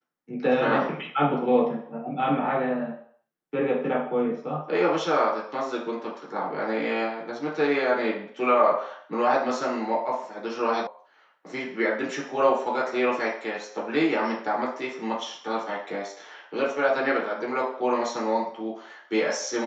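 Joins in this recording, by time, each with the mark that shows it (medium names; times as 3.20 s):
10.87 s: sound stops dead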